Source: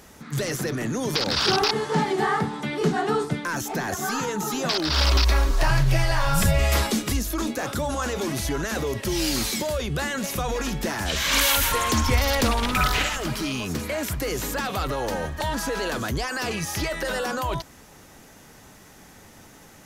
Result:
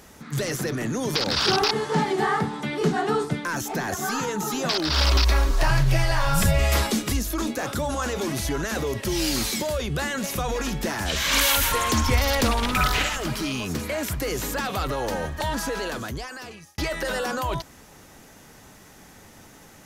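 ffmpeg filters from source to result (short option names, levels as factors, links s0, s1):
-filter_complex "[0:a]asplit=2[s0][s1];[s0]atrim=end=16.78,asetpts=PTS-STARTPTS,afade=t=out:st=15.59:d=1.19[s2];[s1]atrim=start=16.78,asetpts=PTS-STARTPTS,afade=t=in:d=0.004:c=hsin[s3];[s2][s3]concat=n=2:v=0:a=1"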